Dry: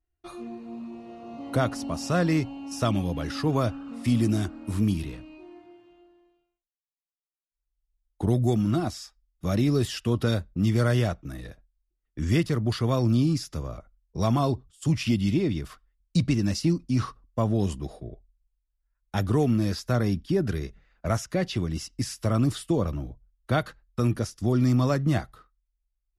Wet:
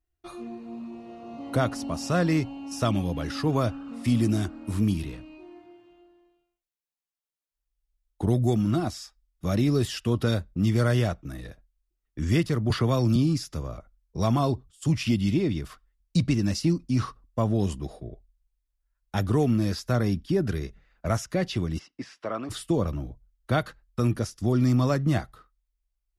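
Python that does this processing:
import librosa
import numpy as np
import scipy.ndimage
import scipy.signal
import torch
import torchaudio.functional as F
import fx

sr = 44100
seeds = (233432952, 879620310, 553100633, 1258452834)

y = fx.band_squash(x, sr, depth_pct=70, at=(12.7, 13.16))
y = fx.bandpass_edges(y, sr, low_hz=fx.line((21.78, 250.0), (22.49, 520.0)), high_hz=2500.0, at=(21.78, 22.49), fade=0.02)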